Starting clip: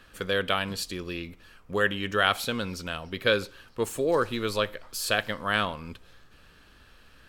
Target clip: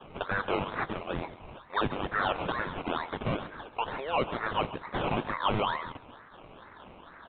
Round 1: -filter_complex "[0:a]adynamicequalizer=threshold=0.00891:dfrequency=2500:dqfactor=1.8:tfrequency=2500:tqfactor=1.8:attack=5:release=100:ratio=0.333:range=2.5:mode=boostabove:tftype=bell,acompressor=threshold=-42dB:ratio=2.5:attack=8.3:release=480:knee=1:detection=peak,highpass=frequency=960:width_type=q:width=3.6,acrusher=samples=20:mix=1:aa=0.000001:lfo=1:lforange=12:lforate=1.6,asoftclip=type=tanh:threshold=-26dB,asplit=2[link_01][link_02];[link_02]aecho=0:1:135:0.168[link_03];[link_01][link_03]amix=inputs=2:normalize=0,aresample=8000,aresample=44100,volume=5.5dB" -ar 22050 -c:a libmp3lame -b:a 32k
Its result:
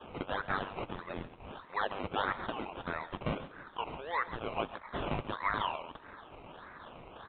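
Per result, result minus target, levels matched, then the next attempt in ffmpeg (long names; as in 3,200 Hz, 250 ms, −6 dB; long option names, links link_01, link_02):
sample-and-hold swept by an LFO: distortion −14 dB; downward compressor: peak gain reduction +7 dB
-filter_complex "[0:a]adynamicequalizer=threshold=0.00891:dfrequency=2500:dqfactor=1.8:tfrequency=2500:tqfactor=1.8:attack=5:release=100:ratio=0.333:range=2.5:mode=boostabove:tftype=bell,acompressor=threshold=-42dB:ratio=2.5:attack=8.3:release=480:knee=1:detection=peak,highpass=frequency=960:width_type=q:width=3.6,acrusher=samples=20:mix=1:aa=0.000001:lfo=1:lforange=12:lforate=2.2,asoftclip=type=tanh:threshold=-26dB,asplit=2[link_01][link_02];[link_02]aecho=0:1:135:0.168[link_03];[link_01][link_03]amix=inputs=2:normalize=0,aresample=8000,aresample=44100,volume=5.5dB" -ar 22050 -c:a libmp3lame -b:a 32k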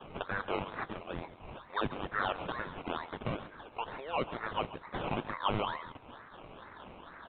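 downward compressor: peak gain reduction +7 dB
-filter_complex "[0:a]adynamicequalizer=threshold=0.00891:dfrequency=2500:dqfactor=1.8:tfrequency=2500:tqfactor=1.8:attack=5:release=100:ratio=0.333:range=2.5:mode=boostabove:tftype=bell,acompressor=threshold=-30dB:ratio=2.5:attack=8.3:release=480:knee=1:detection=peak,highpass=frequency=960:width_type=q:width=3.6,acrusher=samples=20:mix=1:aa=0.000001:lfo=1:lforange=12:lforate=2.2,asoftclip=type=tanh:threshold=-26dB,asplit=2[link_01][link_02];[link_02]aecho=0:1:135:0.168[link_03];[link_01][link_03]amix=inputs=2:normalize=0,aresample=8000,aresample=44100,volume=5.5dB" -ar 22050 -c:a libmp3lame -b:a 32k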